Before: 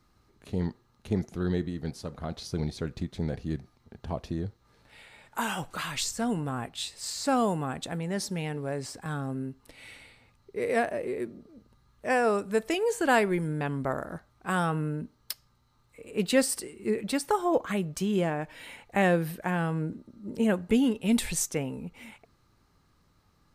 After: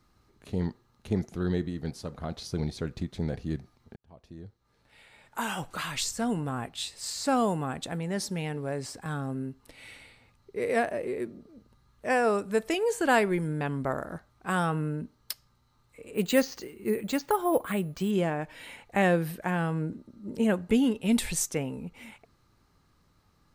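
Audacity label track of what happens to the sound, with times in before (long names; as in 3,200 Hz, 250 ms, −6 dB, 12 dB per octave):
3.960000	5.700000	fade in
16.140000	18.110000	bad sample-rate conversion rate divided by 4×, down filtered, up hold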